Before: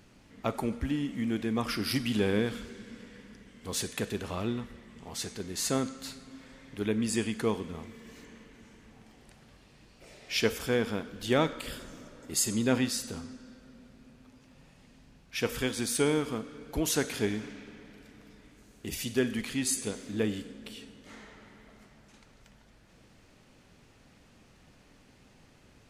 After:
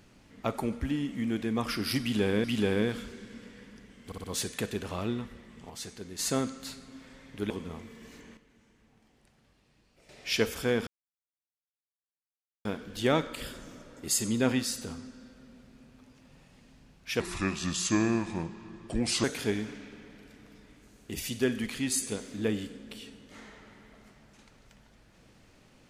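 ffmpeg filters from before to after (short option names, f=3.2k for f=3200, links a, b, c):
-filter_complex "[0:a]asplit=13[a][b][c][d][e][f][g][h][i][j][k][l][m];[a]atrim=end=2.442[n];[b]atrim=start=2.008:end=3.692[o];[c]atrim=start=3.628:end=3.692[p];[d]atrim=start=3.628:end=3.692[q];[e]atrim=start=3.628:end=5.092[r];[f]atrim=start=5.088:end=5.582,asetpts=PTS-STARTPTS,volume=-4.5dB[s];[g]atrim=start=5.578:end=6.892[t];[h]atrim=start=7.538:end=8.412[u];[i]atrim=start=8.408:end=10.132,asetpts=PTS-STARTPTS,volume=-9.5dB[v];[j]atrim=start=10.128:end=10.91,asetpts=PTS-STARTPTS,afade=t=out:st=0.778:d=0.004:c=hsin,apad=pad_dur=1.78[w];[k]atrim=start=10.91:end=15.464,asetpts=PTS-STARTPTS,afade=t=in:d=0.004:c=hsin[x];[l]atrim=start=15.46:end=16.99,asetpts=PTS-STARTPTS,asetrate=33075,aresample=44100[y];[m]atrim=start=16.986[z];[n][o]acrossfade=d=0.004:c1=hsin:c2=hsin[aa];[aa][p]acrossfade=d=0.004:c1=hsin:c2=hsin[ab];[ab][q]acrossfade=d=0.004:c1=hsin:c2=hsin[ac];[ac][r]acrossfade=d=0.004:c1=hsin:c2=hsin[ad];[ad][s]acrossfade=d=0.004:c1=hsin:c2=hsin[ae];[ae][t]acrossfade=d=0.004:c1=hsin:c2=hsin[af];[af][u]acrossfade=d=0.004:c1=hsin:c2=hsin[ag];[ag][v]acrossfade=d=0.004:c1=hsin:c2=hsin[ah];[w][x]concat=n=2:v=0:a=1[ai];[ah][ai]acrossfade=d=0.004:c1=hsin:c2=hsin[aj];[aj][y]acrossfade=d=0.004:c1=hsin:c2=hsin[ak];[ak][z]acrossfade=d=0.004:c1=hsin:c2=hsin"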